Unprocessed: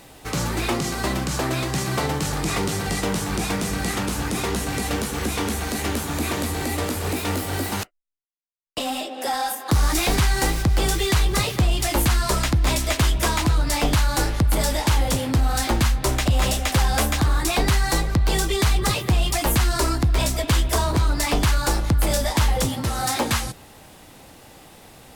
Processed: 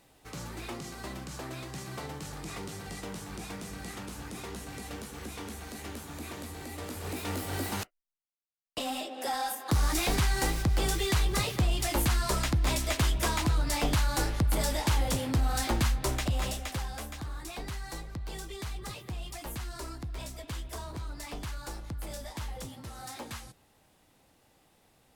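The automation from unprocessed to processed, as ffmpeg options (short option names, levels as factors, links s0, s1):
-af "volume=0.422,afade=t=in:st=6.73:d=0.9:silence=0.375837,afade=t=out:st=15.93:d=1.04:silence=0.266073"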